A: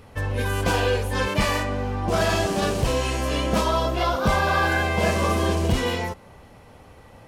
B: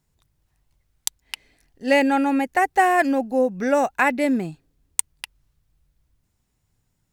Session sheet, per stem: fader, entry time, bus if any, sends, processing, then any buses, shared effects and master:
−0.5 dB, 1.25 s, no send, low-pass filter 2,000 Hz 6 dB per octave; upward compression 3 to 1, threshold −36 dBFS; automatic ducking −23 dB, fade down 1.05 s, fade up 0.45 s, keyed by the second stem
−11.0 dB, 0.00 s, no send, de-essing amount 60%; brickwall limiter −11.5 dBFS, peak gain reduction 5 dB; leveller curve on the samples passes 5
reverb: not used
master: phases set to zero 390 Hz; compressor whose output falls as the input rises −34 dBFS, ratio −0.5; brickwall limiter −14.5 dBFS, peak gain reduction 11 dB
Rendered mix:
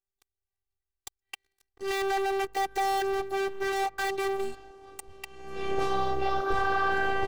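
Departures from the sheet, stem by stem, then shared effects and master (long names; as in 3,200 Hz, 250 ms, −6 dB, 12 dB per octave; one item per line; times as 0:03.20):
stem A: entry 1.25 s → 2.25 s
master: missing compressor whose output falls as the input rises −34 dBFS, ratio −0.5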